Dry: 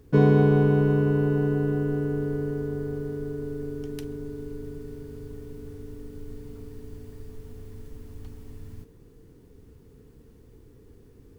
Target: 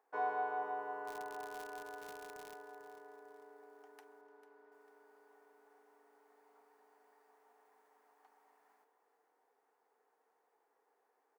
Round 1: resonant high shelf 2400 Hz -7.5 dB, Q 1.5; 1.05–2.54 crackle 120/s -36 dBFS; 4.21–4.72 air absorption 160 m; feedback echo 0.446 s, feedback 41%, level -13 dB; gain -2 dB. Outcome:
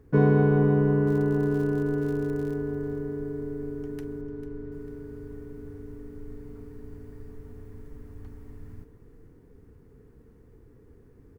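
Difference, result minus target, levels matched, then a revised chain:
1000 Hz band -16.0 dB
ladder high-pass 720 Hz, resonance 70%; resonant high shelf 2400 Hz -7.5 dB, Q 1.5; 1.05–2.54 crackle 120/s -36 dBFS; 4.21–4.72 air absorption 160 m; feedback echo 0.446 s, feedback 41%, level -13 dB; gain -2 dB

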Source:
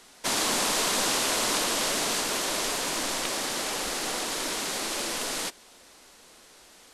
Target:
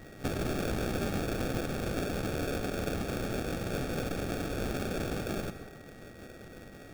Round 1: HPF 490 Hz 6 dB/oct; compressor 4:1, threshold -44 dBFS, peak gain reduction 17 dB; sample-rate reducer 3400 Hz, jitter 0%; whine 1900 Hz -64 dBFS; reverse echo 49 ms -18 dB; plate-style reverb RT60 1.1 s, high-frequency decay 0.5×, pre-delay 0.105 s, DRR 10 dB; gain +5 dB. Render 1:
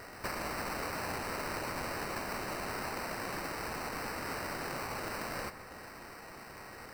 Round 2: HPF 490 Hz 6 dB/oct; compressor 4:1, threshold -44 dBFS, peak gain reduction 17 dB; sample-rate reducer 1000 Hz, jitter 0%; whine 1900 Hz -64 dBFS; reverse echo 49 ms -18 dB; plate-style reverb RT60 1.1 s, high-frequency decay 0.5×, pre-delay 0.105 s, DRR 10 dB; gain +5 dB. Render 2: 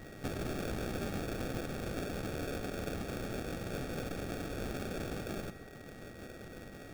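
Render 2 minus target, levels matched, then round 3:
compressor: peak gain reduction +5 dB
HPF 490 Hz 6 dB/oct; compressor 4:1, threshold -37 dBFS, peak gain reduction 11.5 dB; sample-rate reducer 1000 Hz, jitter 0%; whine 1900 Hz -64 dBFS; reverse echo 49 ms -18 dB; plate-style reverb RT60 1.1 s, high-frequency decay 0.5×, pre-delay 0.105 s, DRR 10 dB; gain +5 dB

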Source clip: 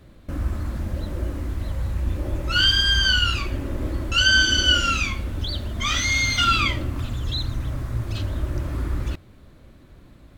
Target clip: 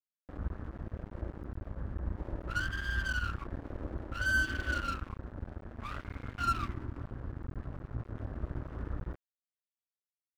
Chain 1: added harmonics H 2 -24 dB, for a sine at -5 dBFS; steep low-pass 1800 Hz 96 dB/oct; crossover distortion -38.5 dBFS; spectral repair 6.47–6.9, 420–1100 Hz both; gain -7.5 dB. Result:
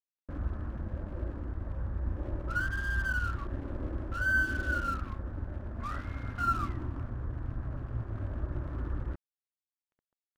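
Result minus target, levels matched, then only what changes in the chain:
crossover distortion: distortion -10 dB
change: crossover distortion -28.5 dBFS

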